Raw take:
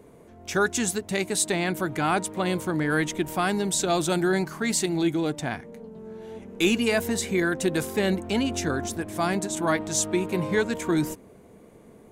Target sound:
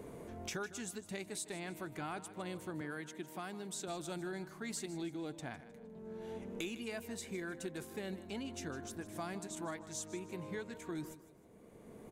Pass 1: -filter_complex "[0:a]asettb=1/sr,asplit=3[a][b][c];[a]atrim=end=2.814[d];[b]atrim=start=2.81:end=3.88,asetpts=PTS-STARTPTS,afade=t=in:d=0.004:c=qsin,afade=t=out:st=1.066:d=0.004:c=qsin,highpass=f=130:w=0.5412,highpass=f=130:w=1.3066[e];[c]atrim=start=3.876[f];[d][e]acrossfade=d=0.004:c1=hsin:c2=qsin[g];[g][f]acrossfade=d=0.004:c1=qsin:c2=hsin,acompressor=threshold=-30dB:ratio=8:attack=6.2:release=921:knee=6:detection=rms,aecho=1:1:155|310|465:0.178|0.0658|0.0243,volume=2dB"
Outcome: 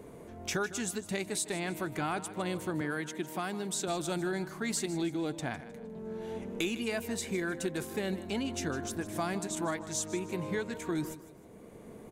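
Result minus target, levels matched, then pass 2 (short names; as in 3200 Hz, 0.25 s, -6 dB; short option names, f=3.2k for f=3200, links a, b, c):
compressor: peak gain reduction -8.5 dB
-filter_complex "[0:a]asettb=1/sr,asplit=3[a][b][c];[a]atrim=end=2.814[d];[b]atrim=start=2.81:end=3.88,asetpts=PTS-STARTPTS,afade=t=in:d=0.004:c=qsin,afade=t=out:st=1.066:d=0.004:c=qsin,highpass=f=130:w=0.5412,highpass=f=130:w=1.3066[e];[c]atrim=start=3.876[f];[d][e]acrossfade=d=0.004:c1=hsin:c2=qsin[g];[g][f]acrossfade=d=0.004:c1=qsin:c2=hsin,acompressor=threshold=-40dB:ratio=8:attack=6.2:release=921:knee=6:detection=rms,aecho=1:1:155|310|465:0.178|0.0658|0.0243,volume=2dB"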